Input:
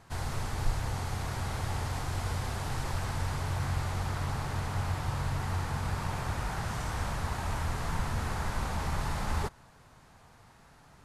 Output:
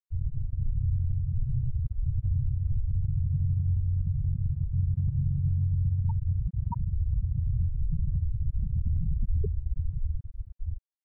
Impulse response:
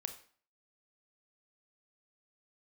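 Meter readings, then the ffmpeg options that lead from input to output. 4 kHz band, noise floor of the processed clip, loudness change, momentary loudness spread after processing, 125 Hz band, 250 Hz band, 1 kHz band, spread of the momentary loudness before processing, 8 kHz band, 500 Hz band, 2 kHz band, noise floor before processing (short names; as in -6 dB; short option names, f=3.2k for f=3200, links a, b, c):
under -40 dB, -49 dBFS, +4.0 dB, 6 LU, +6.5 dB, 0.0 dB, -16.0 dB, 2 LU, under -35 dB, under -10 dB, under -40 dB, -58 dBFS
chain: -af "aecho=1:1:730|1314|1781|2155|2454:0.631|0.398|0.251|0.158|0.1,afftfilt=real='re*gte(hypot(re,im),0.158)':imag='im*gte(hypot(re,im),0.158)':win_size=1024:overlap=0.75,alimiter=level_in=4dB:limit=-24dB:level=0:latency=1:release=76,volume=-4dB,equalizer=f=2.2k:w=0.42:g=10,volume=8dB"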